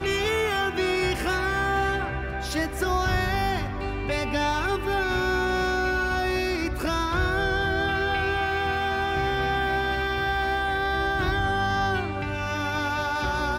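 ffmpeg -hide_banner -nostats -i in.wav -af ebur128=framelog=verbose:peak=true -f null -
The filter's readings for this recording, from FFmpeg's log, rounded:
Integrated loudness:
  I:         -25.3 LUFS
  Threshold: -35.3 LUFS
Loudness range:
  LRA:         1.3 LU
  Threshold: -45.3 LUFS
  LRA low:   -26.2 LUFS
  LRA high:  -24.8 LUFS
True peak:
  Peak:      -13.8 dBFS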